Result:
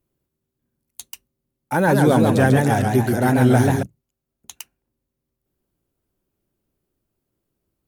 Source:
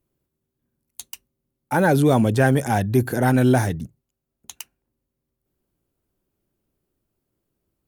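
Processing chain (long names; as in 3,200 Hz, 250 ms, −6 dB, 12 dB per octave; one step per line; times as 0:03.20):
0:01.73–0:03.83: feedback echo with a swinging delay time 139 ms, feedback 56%, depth 172 cents, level −4 dB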